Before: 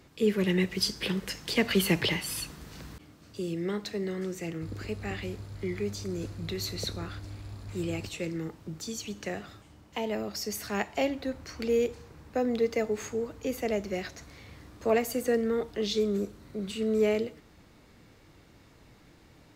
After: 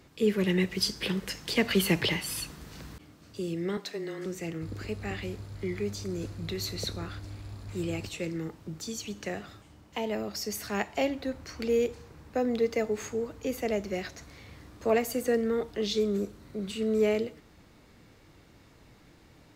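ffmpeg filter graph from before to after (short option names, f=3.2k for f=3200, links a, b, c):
-filter_complex "[0:a]asettb=1/sr,asplit=3[a][b][c];[a]atrim=end=3.774[d];[b]atrim=start=3.77:end=4.26,asetpts=PTS-STARTPTS,afade=t=in:d=0.004:c=qsin,afade=t=out:st=0.486:d=0.004:c=qsin,highpass=340,afreqshift=-20[e];[c]atrim=start=4.256[f];[d][e]acrossfade=d=0.004:c1=hsin:c2=qsin[g];[g][f]acrossfade=d=0.004:c1=qsin:c2=hsin"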